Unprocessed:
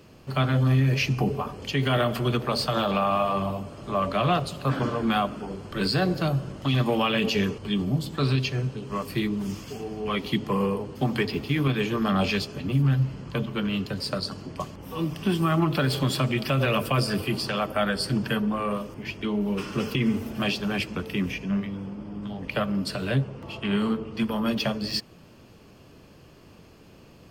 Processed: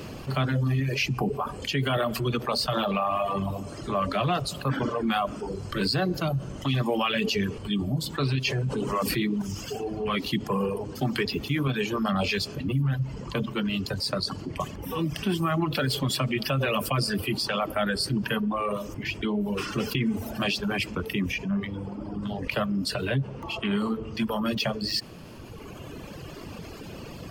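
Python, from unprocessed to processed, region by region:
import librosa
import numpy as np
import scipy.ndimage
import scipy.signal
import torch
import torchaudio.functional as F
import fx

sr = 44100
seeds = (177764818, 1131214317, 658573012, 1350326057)

y = fx.chain(x, sr, fx.hum_notches(base_hz=50, count=4),
    fx.env_flatten(amount_pct=70), at=(8.45, 9.42))
y = fx.dereverb_blind(y, sr, rt60_s=1.7)
y = fx.env_flatten(y, sr, amount_pct=50)
y = y * librosa.db_to_amplitude(-3.0)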